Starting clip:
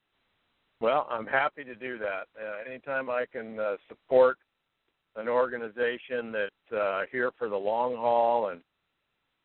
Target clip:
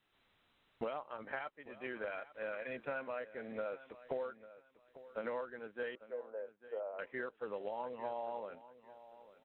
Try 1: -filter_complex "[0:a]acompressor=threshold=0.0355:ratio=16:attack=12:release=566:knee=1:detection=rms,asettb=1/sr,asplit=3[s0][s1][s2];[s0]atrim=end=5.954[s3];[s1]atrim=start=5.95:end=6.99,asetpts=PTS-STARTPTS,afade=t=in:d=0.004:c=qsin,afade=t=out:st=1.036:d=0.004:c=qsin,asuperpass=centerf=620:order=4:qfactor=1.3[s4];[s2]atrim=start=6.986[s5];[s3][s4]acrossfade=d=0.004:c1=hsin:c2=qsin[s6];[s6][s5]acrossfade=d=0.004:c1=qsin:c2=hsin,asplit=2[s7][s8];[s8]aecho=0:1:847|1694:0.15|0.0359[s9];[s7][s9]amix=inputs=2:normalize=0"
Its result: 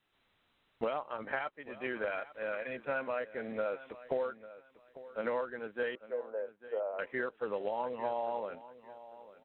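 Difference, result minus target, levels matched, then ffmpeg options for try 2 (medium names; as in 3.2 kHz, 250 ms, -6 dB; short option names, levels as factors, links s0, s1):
compression: peak gain reduction -6 dB
-filter_complex "[0:a]acompressor=threshold=0.0168:ratio=16:attack=12:release=566:knee=1:detection=rms,asettb=1/sr,asplit=3[s0][s1][s2];[s0]atrim=end=5.954[s3];[s1]atrim=start=5.95:end=6.99,asetpts=PTS-STARTPTS,afade=t=in:d=0.004:c=qsin,afade=t=out:st=1.036:d=0.004:c=qsin,asuperpass=centerf=620:order=4:qfactor=1.3[s4];[s2]atrim=start=6.986[s5];[s3][s4]acrossfade=d=0.004:c1=hsin:c2=qsin[s6];[s6][s5]acrossfade=d=0.004:c1=qsin:c2=hsin,asplit=2[s7][s8];[s8]aecho=0:1:847|1694:0.15|0.0359[s9];[s7][s9]amix=inputs=2:normalize=0"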